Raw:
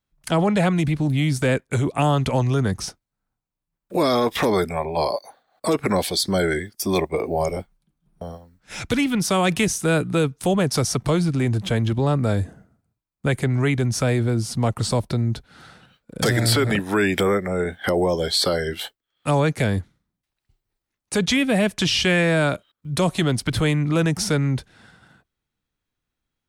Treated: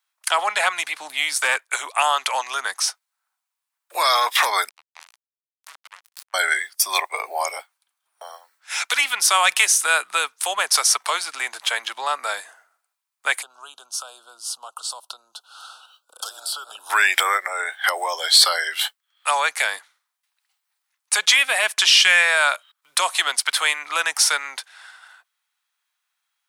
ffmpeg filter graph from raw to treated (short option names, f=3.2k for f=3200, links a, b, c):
-filter_complex "[0:a]asettb=1/sr,asplit=3[a][b][c];[a]atrim=end=0.954[d];[b]atrim=start=0.95:end=1.62,asetpts=PTS-STARTPTS,afade=t=in:d=0.004:c=qsin,afade=t=out:st=0.666:d=0.004:c=qsin,highpass=120,lowshelf=f=200:g=9.5,volume=10dB,asoftclip=hard,volume=-10dB[e];[c]atrim=start=1.616[f];[d][e]acrossfade=d=0.004:c1=hsin:c2=qsin[g];[g][f]acrossfade=d=0.004:c1=qsin:c2=hsin,asettb=1/sr,asplit=3[h][i][j];[h]atrim=end=4.694[k];[i]atrim=start=4.69:end=6.34,asetpts=PTS-STARTPTS,afade=t=in:d=0.004:c=qsin,afade=t=out:st=1.646:d=0.004:c=qsin,acompressor=threshold=-42dB:ratio=2:attack=3.2:release=140:knee=1:detection=peak,acrusher=bits=3:mix=0:aa=0.5[l];[j]atrim=start=6.336[m];[k][l]acrossfade=d=0.004:c1=hsin:c2=qsin[n];[n][m]acrossfade=d=0.004:c1=qsin:c2=hsin,asettb=1/sr,asplit=3[o][p][q];[o]atrim=end=13.424[r];[p]atrim=start=13.42:end=16.9,asetpts=PTS-STARTPTS,afade=t=in:d=0.004:c=qsin,afade=t=out:st=3.476:d=0.004:c=qsin,acompressor=threshold=-35dB:ratio=3:attack=3.2:release=140:knee=1:detection=peak,asuperstop=centerf=2000:order=8:qfactor=1.5[s];[q]atrim=start=16.896[t];[r][s]acrossfade=d=0.004:c1=hsin:c2=qsin[u];[u][t]acrossfade=d=0.004:c1=qsin:c2=hsin,highpass=f=910:w=0.5412,highpass=f=910:w=1.3066,equalizer=f=9.6k:t=o:w=0.57:g=3,acontrast=77,volume=1.5dB"